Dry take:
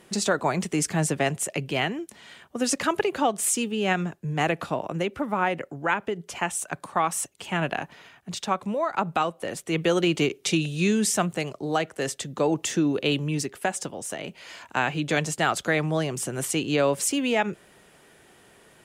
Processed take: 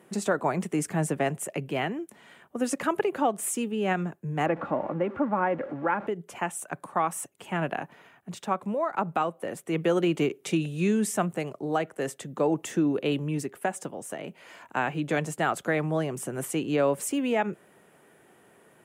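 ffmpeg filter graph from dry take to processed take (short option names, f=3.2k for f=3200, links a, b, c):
-filter_complex "[0:a]asettb=1/sr,asplit=3[a][b][c];[a]atrim=end=4.464[d];[b]atrim=start=4.46:end=6.07,asetpts=PTS-STARTPTS,afade=t=in:d=0.004:c=qsin,afade=t=out:st=1.606:d=0.004:c=qsin,aeval=exprs='val(0)+0.5*0.0211*sgn(val(0))':c=same,lowpass=1.8k,aecho=1:1:3.6:0.37,atrim=end_sample=71001[e];[c]atrim=start=6.066[f];[d][e]acrossfade=d=0.004:c1=hsin:c2=qsin[g];[g][f]acrossfade=d=0.004:c1=qsin:c2=hsin,highpass=130,equalizer=f=4.7k:t=o:w=1.7:g=-12.5,volume=-1dB"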